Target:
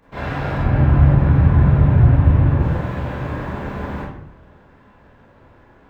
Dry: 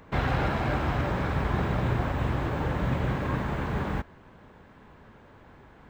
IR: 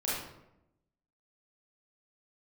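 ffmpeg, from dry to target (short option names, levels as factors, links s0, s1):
-filter_complex "[0:a]asettb=1/sr,asplit=3[s0][s1][s2];[s0]atrim=end=0.584[s3];[s1]atrim=start=0.58:end=2.6,asetpts=PTS-STARTPTS,afade=t=in:d=0.004:c=qsin,afade=t=out:st=2.016:d=0.004:c=qsin,bass=f=250:g=14,treble=f=4000:g=-12[s4];[s2]atrim=start=2.596[s5];[s3][s4]acrossfade=d=0.004:c1=hsin:c2=qsin[s6];[s6][s5]acrossfade=d=0.004:c1=qsin:c2=hsin[s7];[1:a]atrim=start_sample=2205,asetrate=48510,aresample=44100[s8];[s7][s8]afir=irnorm=-1:irlink=0,volume=0.668"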